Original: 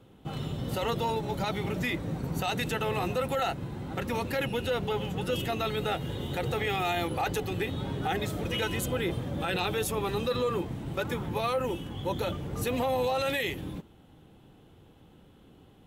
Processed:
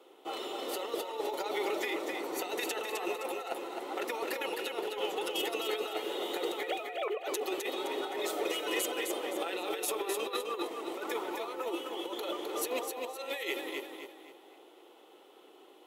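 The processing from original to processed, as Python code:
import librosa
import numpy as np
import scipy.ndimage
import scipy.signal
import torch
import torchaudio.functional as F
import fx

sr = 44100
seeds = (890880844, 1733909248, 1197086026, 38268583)

y = fx.sine_speech(x, sr, at=(6.63, 7.23))
y = scipy.signal.sosfilt(scipy.signal.ellip(4, 1.0, 80, 350.0, 'highpass', fs=sr, output='sos'), y)
y = fx.notch(y, sr, hz=1600.0, q=7.1)
y = fx.over_compress(y, sr, threshold_db=-35.0, ratio=-0.5)
y = fx.echo_feedback(y, sr, ms=259, feedback_pct=37, wet_db=-5)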